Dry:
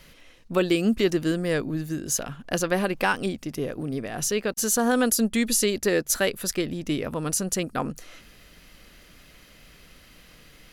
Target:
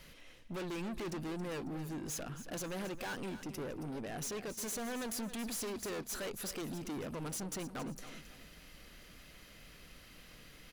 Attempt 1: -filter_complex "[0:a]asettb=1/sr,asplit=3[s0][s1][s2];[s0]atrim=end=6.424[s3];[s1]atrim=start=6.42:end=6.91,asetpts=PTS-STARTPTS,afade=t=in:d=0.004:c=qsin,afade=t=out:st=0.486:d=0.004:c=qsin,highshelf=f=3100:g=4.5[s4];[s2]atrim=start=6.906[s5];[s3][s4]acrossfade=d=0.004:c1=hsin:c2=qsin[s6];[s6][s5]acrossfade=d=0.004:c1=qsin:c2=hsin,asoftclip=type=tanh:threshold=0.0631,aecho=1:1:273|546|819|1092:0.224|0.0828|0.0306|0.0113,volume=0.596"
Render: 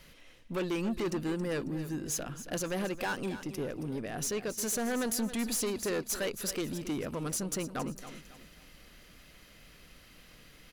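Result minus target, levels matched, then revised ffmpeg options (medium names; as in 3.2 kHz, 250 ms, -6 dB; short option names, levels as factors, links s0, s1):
saturation: distortion -5 dB
-filter_complex "[0:a]asettb=1/sr,asplit=3[s0][s1][s2];[s0]atrim=end=6.424[s3];[s1]atrim=start=6.42:end=6.91,asetpts=PTS-STARTPTS,afade=t=in:d=0.004:c=qsin,afade=t=out:st=0.486:d=0.004:c=qsin,highshelf=f=3100:g=4.5[s4];[s2]atrim=start=6.906[s5];[s3][s4]acrossfade=d=0.004:c1=hsin:c2=qsin[s6];[s6][s5]acrossfade=d=0.004:c1=qsin:c2=hsin,asoftclip=type=tanh:threshold=0.02,aecho=1:1:273|546|819|1092:0.224|0.0828|0.0306|0.0113,volume=0.596"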